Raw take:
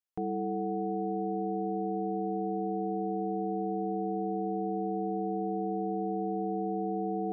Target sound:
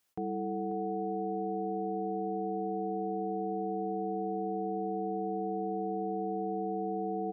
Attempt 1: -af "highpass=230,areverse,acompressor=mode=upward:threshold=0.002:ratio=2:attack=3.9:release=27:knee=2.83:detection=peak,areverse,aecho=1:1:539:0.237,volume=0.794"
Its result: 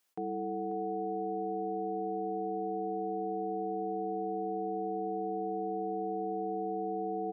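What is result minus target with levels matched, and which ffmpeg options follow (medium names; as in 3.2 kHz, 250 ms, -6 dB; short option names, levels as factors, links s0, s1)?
125 Hz band -4.0 dB
-af "highpass=60,areverse,acompressor=mode=upward:threshold=0.002:ratio=2:attack=3.9:release=27:knee=2.83:detection=peak,areverse,aecho=1:1:539:0.237,volume=0.794"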